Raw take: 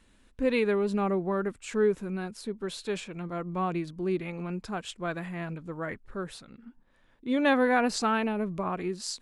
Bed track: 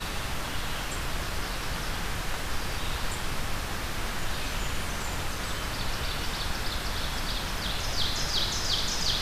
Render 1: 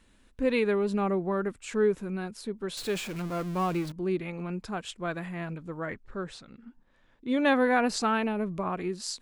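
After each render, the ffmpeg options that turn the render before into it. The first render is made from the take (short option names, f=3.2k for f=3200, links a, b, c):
-filter_complex "[0:a]asettb=1/sr,asplit=3[a][b][c];[a]atrim=end=2.774[d];[b]atrim=start=2.77:end=3.92,asetpts=PTS-STARTPTS,afade=t=in:d=0.004:c=qsin,afade=t=out:st=1.146:d=0.004:c=qsin,aeval=exprs='val(0)+0.5*0.015*sgn(val(0))':c=same[e];[c]atrim=start=3.916[f];[d][e]acrossfade=d=0.004:c1=hsin:c2=qsin[g];[g][f]acrossfade=d=0.004:c1=qsin:c2=hsin,asettb=1/sr,asplit=3[h][i][j];[h]atrim=end=5.814[k];[i]atrim=start=5.81:end=7.28,asetpts=PTS-STARTPTS,afade=t=in:d=0.004:c=qsin,afade=t=out:st=1.466:d=0.004:c=qsin,lowpass=f=8.2k:w=0.5412,lowpass=f=8.2k:w=1.3066[l];[j]atrim=start=7.276[m];[k][l]acrossfade=d=0.004:c1=hsin:c2=qsin[n];[n][m]acrossfade=d=0.004:c1=qsin:c2=hsin"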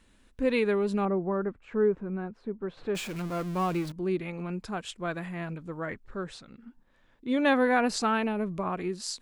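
-filter_complex "[0:a]asettb=1/sr,asplit=3[a][b][c];[a]atrim=end=1.054[d];[b]atrim=start=1.05:end=2.95,asetpts=PTS-STARTPTS,afade=t=in:d=0.004:c=qsin,afade=t=out:st=1.896:d=0.004:c=qsin,lowpass=1.4k[e];[c]atrim=start=2.946[f];[d][e]acrossfade=d=0.004:c1=hsin:c2=qsin[g];[g][f]acrossfade=d=0.004:c1=qsin:c2=hsin"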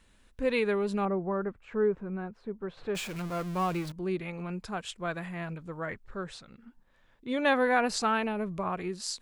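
-af "equalizer=f=280:w=1.6:g=-5.5"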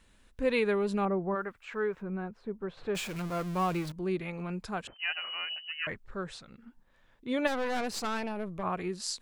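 -filter_complex "[0:a]asplit=3[a][b][c];[a]afade=t=out:st=1.34:d=0.02[d];[b]tiltshelf=f=830:g=-9.5,afade=t=in:st=1.34:d=0.02,afade=t=out:st=2.01:d=0.02[e];[c]afade=t=in:st=2.01:d=0.02[f];[d][e][f]amix=inputs=3:normalize=0,asettb=1/sr,asplit=3[g][h][i];[g]atrim=end=4.874[j];[h]atrim=start=4.87:end=5.87,asetpts=PTS-STARTPTS,afade=t=in:d=0.004:c=qsin,afade=t=out:st=0.996:d=0.004:c=qsin,lowpass=f=2.6k:t=q:w=0.5098,lowpass=f=2.6k:t=q:w=0.6013,lowpass=f=2.6k:t=q:w=0.9,lowpass=f=2.6k:t=q:w=2.563,afreqshift=-3100[k];[i]atrim=start=5.866[l];[j][k]acrossfade=d=0.004:c1=hsin:c2=qsin[m];[m][l]acrossfade=d=0.004:c1=qsin:c2=hsin,asplit=3[n][o][p];[n]afade=t=out:st=7.46:d=0.02[q];[o]aeval=exprs='(tanh(28.2*val(0)+0.7)-tanh(0.7))/28.2':c=same,afade=t=in:st=7.46:d=0.02,afade=t=out:st=8.62:d=0.02[r];[p]afade=t=in:st=8.62:d=0.02[s];[q][r][s]amix=inputs=3:normalize=0"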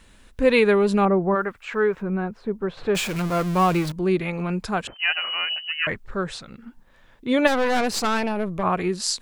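-af "volume=10.5dB"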